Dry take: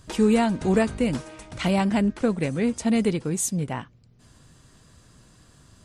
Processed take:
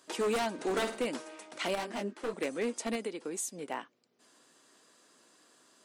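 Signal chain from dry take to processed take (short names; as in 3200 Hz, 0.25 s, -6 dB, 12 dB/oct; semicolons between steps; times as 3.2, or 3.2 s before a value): HPF 300 Hz 24 dB/oct; 2.95–3.64 compressor 6:1, threshold -29 dBFS, peak gain reduction 9 dB; wavefolder -20 dBFS; 0.53–1.06 flutter echo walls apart 8.9 m, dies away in 0.38 s; 1.75–2.34 detuned doubles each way 28 cents; gain -4.5 dB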